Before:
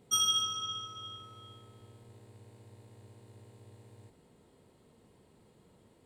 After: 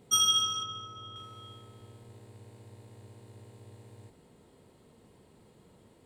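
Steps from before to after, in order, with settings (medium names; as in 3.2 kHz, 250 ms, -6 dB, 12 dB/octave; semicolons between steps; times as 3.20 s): 0.63–1.16 s: treble shelf 2.2 kHz -10 dB; trim +3.5 dB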